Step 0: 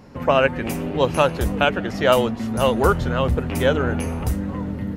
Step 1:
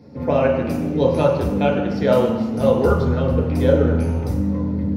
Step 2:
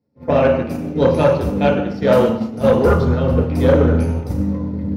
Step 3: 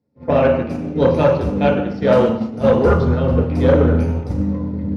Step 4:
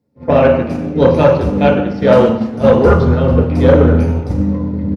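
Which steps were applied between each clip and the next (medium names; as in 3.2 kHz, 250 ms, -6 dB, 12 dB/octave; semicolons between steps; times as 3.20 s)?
peaking EQ 1.1 kHz -3 dB 0.58 oct; reverberation RT60 1.0 s, pre-delay 3 ms, DRR -3 dB; trim -13 dB
expander -15 dBFS; saturation -11 dBFS, distortion -15 dB; trim +5.5 dB
distance through air 70 m
speakerphone echo 340 ms, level -23 dB; trim +4.5 dB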